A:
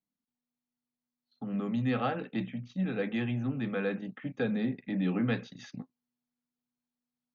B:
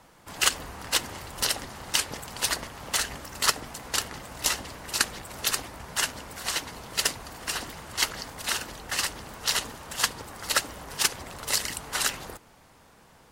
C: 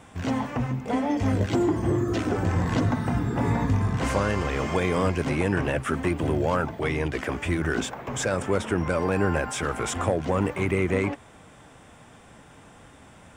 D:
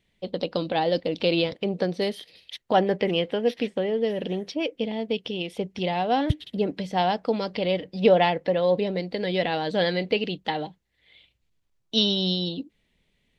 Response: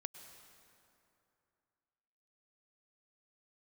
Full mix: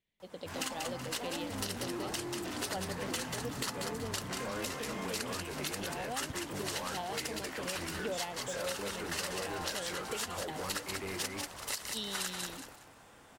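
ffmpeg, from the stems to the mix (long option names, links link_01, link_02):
-filter_complex "[0:a]volume=-11.5dB[link_01];[1:a]alimiter=limit=-13.5dB:level=0:latency=1:release=462,adelay=200,volume=-5.5dB,asplit=2[link_02][link_03];[link_03]volume=-6dB[link_04];[2:a]lowshelf=frequency=170:gain=-6.5,flanger=delay=20:depth=3.8:speed=0.18,asoftclip=type=tanh:threshold=-29dB,adelay=300,volume=-4.5dB[link_05];[3:a]volume=-15.5dB[link_06];[link_04]aecho=0:1:188|376|564|752:1|0.28|0.0784|0.022[link_07];[link_01][link_02][link_05][link_06][link_07]amix=inputs=5:normalize=0,lowshelf=frequency=250:gain=-4.5,acompressor=threshold=-34dB:ratio=3"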